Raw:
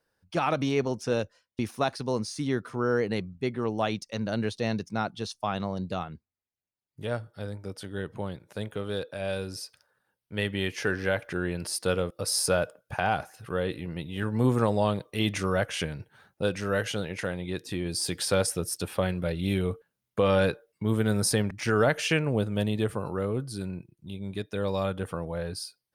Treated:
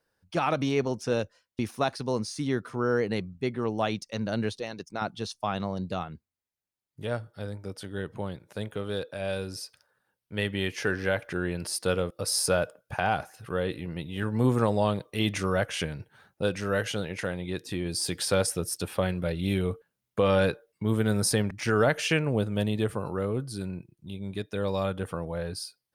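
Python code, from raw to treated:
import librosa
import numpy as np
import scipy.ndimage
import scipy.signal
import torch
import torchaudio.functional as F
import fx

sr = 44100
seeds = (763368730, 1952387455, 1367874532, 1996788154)

y = fx.hpss(x, sr, part='harmonic', gain_db=-16, at=(4.59, 5.02))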